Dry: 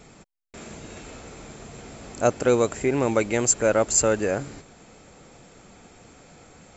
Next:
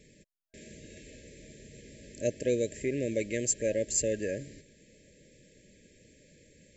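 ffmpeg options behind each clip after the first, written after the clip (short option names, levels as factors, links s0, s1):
-af "afftfilt=real='re*(1-between(b*sr/4096,640,1600))':imag='im*(1-between(b*sr/4096,640,1600))':win_size=4096:overlap=0.75,volume=0.376"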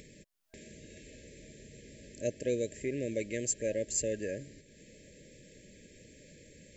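-af "acompressor=mode=upward:threshold=0.00708:ratio=2.5,volume=0.668"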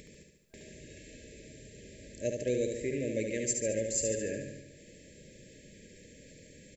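-af "aecho=1:1:72|144|216|288|360|432|504|576:0.562|0.332|0.196|0.115|0.0681|0.0402|0.0237|0.014"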